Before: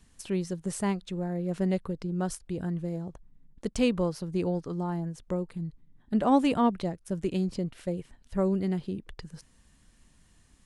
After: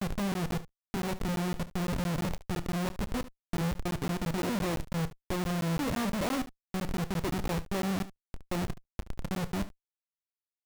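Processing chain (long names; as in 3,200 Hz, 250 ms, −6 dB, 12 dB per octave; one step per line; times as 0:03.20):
slices reordered back to front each 321 ms, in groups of 3
low-pass that shuts in the quiet parts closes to 1,100 Hz, open at −24.5 dBFS
in parallel at −3.5 dB: sample-rate reduction 1,600 Hz, jitter 0%
on the sum: comparator with hysteresis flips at −33 dBFS
on a send: ambience of single reflections 30 ms −15 dB, 73 ms −16 dB
on the sum: regular buffer underruns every 0.17 s, samples 512, zero, from 0:00.34
level −3.5 dB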